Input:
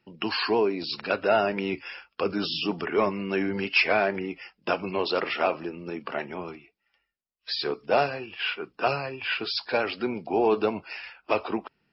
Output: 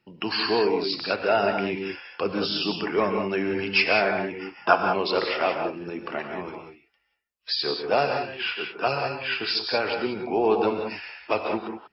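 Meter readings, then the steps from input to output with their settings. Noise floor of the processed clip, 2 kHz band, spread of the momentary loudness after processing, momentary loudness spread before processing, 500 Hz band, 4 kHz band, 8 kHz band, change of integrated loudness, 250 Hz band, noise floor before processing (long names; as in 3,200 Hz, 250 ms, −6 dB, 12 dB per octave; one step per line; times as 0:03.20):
−72 dBFS, +2.0 dB, 11 LU, 12 LU, +1.5 dB, +3.5 dB, can't be measured, +2.0 dB, +1.0 dB, −78 dBFS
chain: gain on a spectral selection 0:04.39–0:04.89, 630–1,700 Hz +10 dB
reverb whose tail is shaped and stops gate 210 ms rising, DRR 4 dB
dynamic equaliser 4,800 Hz, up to +5 dB, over −49 dBFS, Q 4.9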